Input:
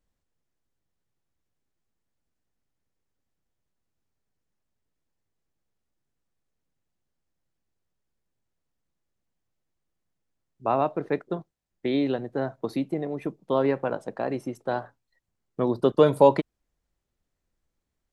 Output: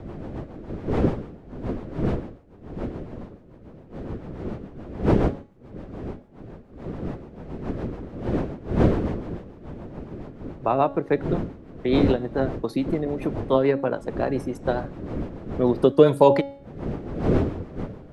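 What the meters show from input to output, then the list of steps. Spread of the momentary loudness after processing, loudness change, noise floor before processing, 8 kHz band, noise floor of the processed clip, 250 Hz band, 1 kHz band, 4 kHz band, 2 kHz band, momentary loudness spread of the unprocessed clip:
19 LU, +1.0 dB, -82 dBFS, no reading, -48 dBFS, +6.5 dB, +2.5 dB, +3.5 dB, +4.0 dB, 14 LU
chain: wind noise 360 Hz -33 dBFS; rotary cabinet horn 7 Hz; de-hum 278.2 Hz, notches 32; trim +5.5 dB

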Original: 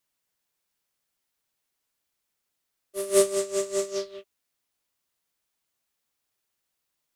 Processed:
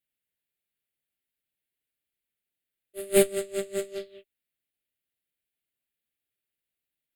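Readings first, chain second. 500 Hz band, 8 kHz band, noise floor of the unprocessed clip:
-1.5 dB, -3.5 dB, -81 dBFS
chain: Chebyshev shaper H 2 -6 dB, 5 -9 dB, 7 -10 dB, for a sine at -6.5 dBFS; static phaser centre 2.5 kHz, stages 4

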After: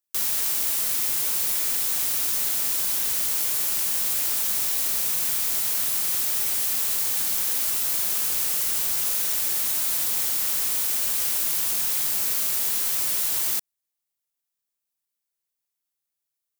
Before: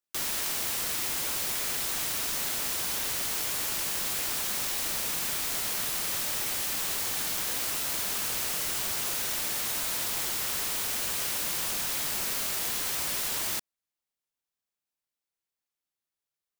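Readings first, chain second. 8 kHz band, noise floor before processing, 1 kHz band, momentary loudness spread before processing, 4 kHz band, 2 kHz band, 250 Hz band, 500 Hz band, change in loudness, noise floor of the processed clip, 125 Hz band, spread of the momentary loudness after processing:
+5.5 dB, under -85 dBFS, -1.5 dB, 0 LU, +1.5 dB, -1.0 dB, -2.0 dB, -2.0 dB, +7.0 dB, -83 dBFS, no reading, 0 LU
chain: treble shelf 6.2 kHz +11 dB; trim -2 dB

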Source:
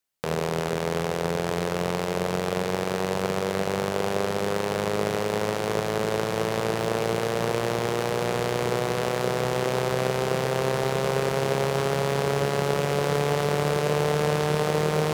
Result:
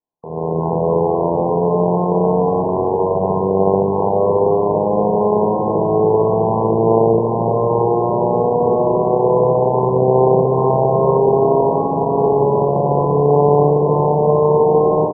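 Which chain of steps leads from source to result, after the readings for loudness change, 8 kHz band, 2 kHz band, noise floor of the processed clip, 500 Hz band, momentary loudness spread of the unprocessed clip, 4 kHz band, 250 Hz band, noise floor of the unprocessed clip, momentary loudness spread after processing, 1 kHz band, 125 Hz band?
+10.5 dB, under -40 dB, under -40 dB, -19 dBFS, +11.5 dB, 3 LU, under -40 dB, +10.5 dB, -29 dBFS, 4 LU, +11.5 dB, +8.5 dB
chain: bass shelf 130 Hz -8.5 dB; band-stop 550 Hz, Q 12; peak limiter -19.5 dBFS, peak gain reduction 10 dB; level rider gain up to 15.5 dB; brick-wall FIR low-pass 1.1 kHz; on a send: early reflections 18 ms -11.5 dB, 62 ms -4 dB; on the sum: trim +2.5 dB

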